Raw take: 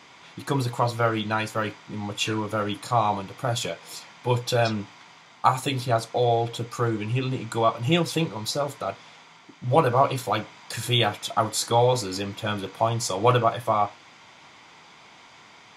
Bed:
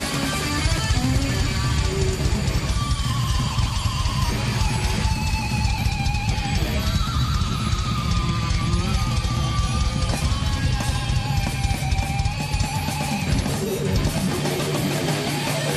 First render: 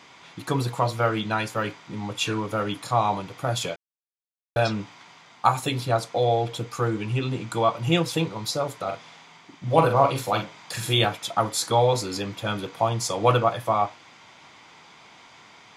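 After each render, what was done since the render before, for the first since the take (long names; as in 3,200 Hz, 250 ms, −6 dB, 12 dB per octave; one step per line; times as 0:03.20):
0:03.76–0:04.56: silence
0:08.84–0:11.05: double-tracking delay 44 ms −6.5 dB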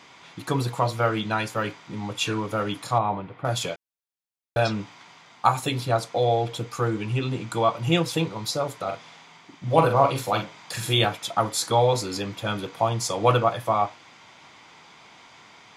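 0:02.98–0:03.45: high-frequency loss of the air 490 metres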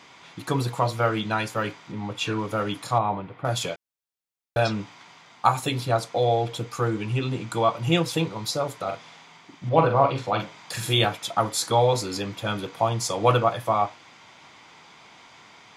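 0:01.91–0:02.38: high-shelf EQ 4,300 Hz → 7,600 Hz −10.5 dB
0:09.69–0:10.40: high-frequency loss of the air 140 metres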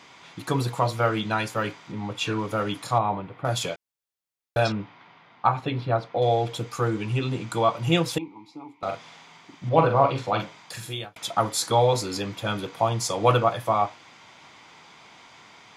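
0:04.72–0:06.22: high-frequency loss of the air 310 metres
0:08.18–0:08.83: formant filter u
0:10.42–0:11.16: fade out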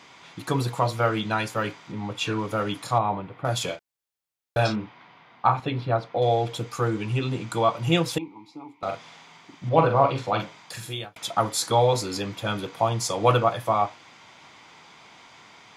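0:03.65–0:05.60: double-tracking delay 33 ms −7.5 dB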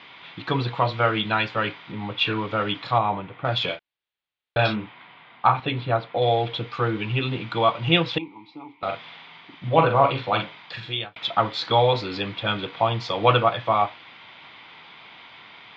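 Butterworth low-pass 3,700 Hz 36 dB per octave
high-shelf EQ 2,000 Hz +11 dB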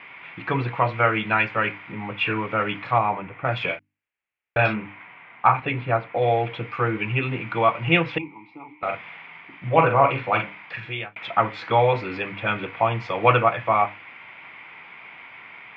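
high shelf with overshoot 3,000 Hz −8.5 dB, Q 3
mains-hum notches 50/100/150/200/250/300 Hz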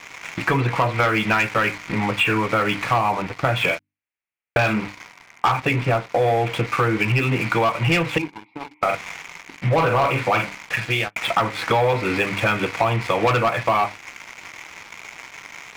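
leveller curve on the samples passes 3
downward compressor 5 to 1, threshold −17 dBFS, peak gain reduction 10 dB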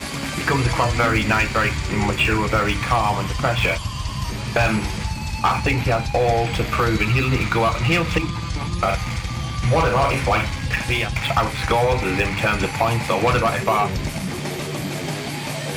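mix in bed −4 dB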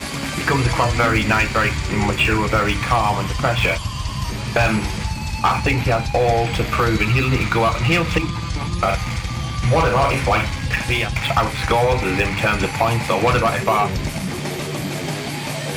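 level +1.5 dB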